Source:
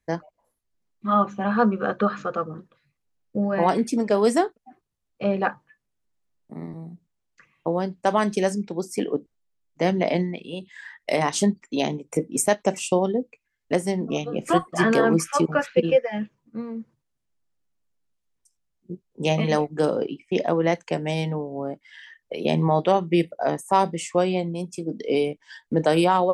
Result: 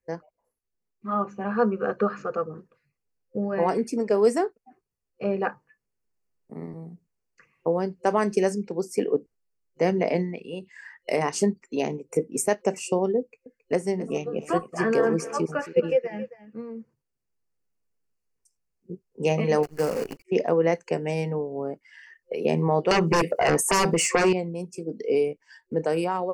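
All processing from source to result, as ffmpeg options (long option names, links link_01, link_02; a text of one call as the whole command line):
ffmpeg -i in.wav -filter_complex "[0:a]asettb=1/sr,asplit=3[link_01][link_02][link_03];[link_01]atrim=end=13.194[link_04];[link_02]atrim=start=13.19:end=16.69,asetpts=PTS-STARTPTS,afade=type=in:duration=0.004:curve=qsin,afade=type=out:start_time=3.496:duration=0.004:curve=qsin,acrossover=split=9200[link_05][link_06];[link_06]acompressor=threshold=-53dB:ratio=4:attack=1:release=60[link_07];[link_05][link_07]amix=inputs=2:normalize=0,aecho=1:1:270:0.168,atrim=end_sample=154350[link_08];[link_03]atrim=start=16.686[link_09];[link_04][link_08]acrossfade=duration=0.004:curve1=hsin:curve2=qsin[link_10];[link_10][link_09]acrossfade=duration=0.004:curve1=qsin:curve2=hsin,asettb=1/sr,asplit=3[link_11][link_12][link_13];[link_11]atrim=end=19.634[link_14];[link_12]atrim=start=19.63:end=20.25,asetpts=PTS-STARTPTS,afade=type=in:duration=0.004:curve=qsin,afade=type=out:start_time=0.616:duration=0.004:curve=qsin,equalizer=frequency=380:width_type=o:width=0.84:gain=-8,bandreject=frequency=50:width_type=h:width=6,bandreject=frequency=100:width_type=h:width=6,acrusher=bits=6:dc=4:mix=0:aa=0.000001[link_15];[link_13]atrim=start=20.246[link_16];[link_14][link_15]acrossfade=duration=0.004:curve1=hsin:curve2=qsin[link_17];[link_17][link_16]acrossfade=duration=0.004:curve1=qsin:curve2=hsin,asettb=1/sr,asplit=3[link_18][link_19][link_20];[link_18]atrim=end=22.914[link_21];[link_19]atrim=start=22.91:end=24.33,asetpts=PTS-STARTPTS,afade=type=in:duration=0.004:curve=qsin,afade=type=out:start_time=1.416:duration=0.004:curve=qsin,highpass=frequency=230:poles=1,aeval=exprs='0.501*sin(PI/2*6.31*val(0)/0.501)':channel_layout=same,acompressor=threshold=-16dB:ratio=6:attack=3.2:release=140:knee=1:detection=peak[link_22];[link_20]atrim=start=24.326[link_23];[link_21][link_22]acrossfade=duration=0.004:curve1=hsin:curve2=qsin[link_24];[link_24][link_23]acrossfade=duration=0.004:curve1=qsin:curve2=hsin,superequalizer=7b=2:13b=0.251,dynaudnorm=framelen=350:gausssize=9:maxgain=9dB,volume=-8dB" out.wav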